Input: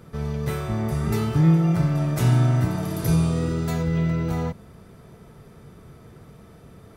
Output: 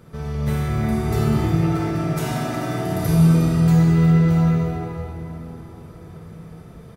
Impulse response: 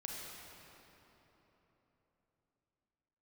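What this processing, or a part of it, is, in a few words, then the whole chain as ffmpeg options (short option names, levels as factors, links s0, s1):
cave: -filter_complex "[0:a]asettb=1/sr,asplit=3[s0][s1][s2];[s0]atrim=end=1.374[s3];[s1]atrim=start=1.37:end=2.86,asetpts=PTS-STARTPTS,afade=t=in:d=0.004:c=qsin,afade=t=out:st=1.486:d=0.004:c=qsin,highpass=290[s4];[s2]atrim=start=2.856[s5];[s3][s4]acrossfade=d=0.004:c1=hsin:c2=qsin[s6];[s6][s5]acrossfade=d=0.004:c1=qsin:c2=hsin,aecho=1:1:360:0.224[s7];[1:a]atrim=start_sample=2205[s8];[s7][s8]afir=irnorm=-1:irlink=0,volume=1.58"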